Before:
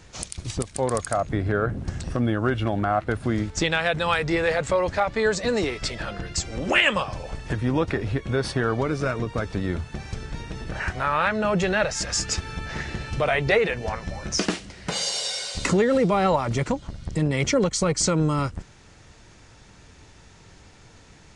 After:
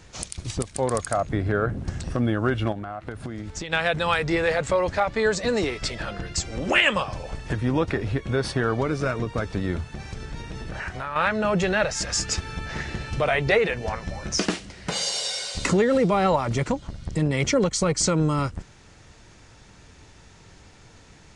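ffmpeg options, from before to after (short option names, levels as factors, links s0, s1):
-filter_complex "[0:a]asettb=1/sr,asplit=3[s0][s1][s2];[s0]atrim=end=2.724[s3];[s1]atrim=start=2.72:end=3.73,asetpts=PTS-STARTPTS,afade=t=in:d=0.004:c=qsin,afade=t=out:st=1.006:d=0.004:c=qsin,acompressor=threshold=0.0398:ratio=16:attack=3.2:release=140:knee=1:detection=peak[s4];[s2]atrim=start=3.726[s5];[s3][s4]acrossfade=d=0.004:c1=hsin:c2=qsin[s6];[s6][s5]acrossfade=d=0.004:c1=qsin:c2=hsin,asettb=1/sr,asplit=3[s7][s8][s9];[s7]atrim=end=9.924[s10];[s8]atrim=start=9.92:end=11.16,asetpts=PTS-STARTPTS,afade=t=in:d=0.004:c=qsin,afade=t=out:st=1.236:d=0.004:c=qsin,acompressor=threshold=0.0355:ratio=3:attack=3.2:release=140:knee=1:detection=peak[s11];[s9]atrim=start=11.156[s12];[s10][s11]acrossfade=d=0.004:c1=hsin:c2=qsin[s13];[s13][s12]acrossfade=d=0.004:c1=qsin:c2=hsin"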